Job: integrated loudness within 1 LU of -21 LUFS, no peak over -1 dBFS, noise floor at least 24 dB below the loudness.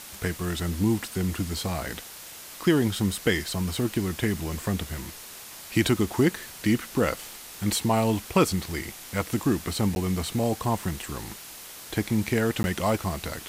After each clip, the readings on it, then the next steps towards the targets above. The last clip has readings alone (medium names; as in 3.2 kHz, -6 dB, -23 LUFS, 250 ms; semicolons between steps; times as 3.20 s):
dropouts 2; longest dropout 11 ms; noise floor -43 dBFS; noise floor target -51 dBFS; loudness -27.0 LUFS; peak level -9.0 dBFS; loudness target -21.0 LUFS
-> interpolate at 9.95/12.63 s, 11 ms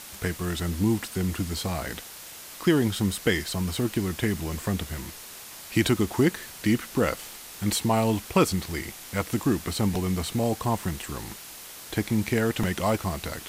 dropouts 0; noise floor -43 dBFS; noise floor target -51 dBFS
-> noise reduction 8 dB, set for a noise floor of -43 dBFS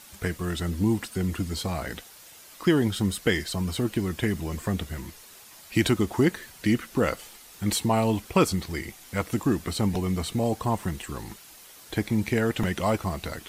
noise floor -49 dBFS; noise floor target -51 dBFS
-> noise reduction 6 dB, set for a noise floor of -49 dBFS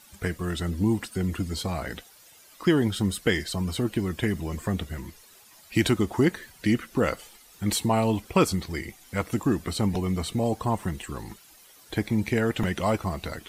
noise floor -54 dBFS; loudness -27.0 LUFS; peak level -9.5 dBFS; loudness target -21.0 LUFS
-> trim +6 dB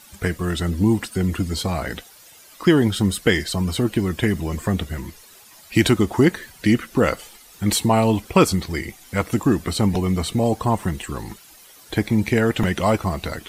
loudness -21.0 LUFS; peak level -3.5 dBFS; noise floor -48 dBFS